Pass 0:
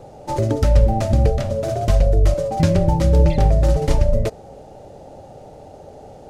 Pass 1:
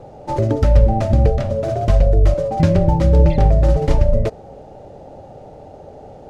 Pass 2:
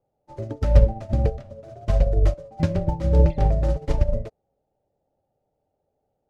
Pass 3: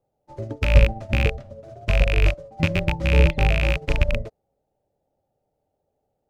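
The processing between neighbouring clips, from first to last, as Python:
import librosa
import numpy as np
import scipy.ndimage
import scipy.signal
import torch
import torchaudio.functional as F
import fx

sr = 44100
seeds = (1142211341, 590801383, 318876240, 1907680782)

y1 = fx.lowpass(x, sr, hz=2700.0, slope=6)
y1 = F.gain(torch.from_numpy(y1), 2.0).numpy()
y2 = fx.upward_expand(y1, sr, threshold_db=-31.0, expansion=2.5)
y3 = fx.rattle_buzz(y2, sr, strikes_db=-21.0, level_db=-11.0)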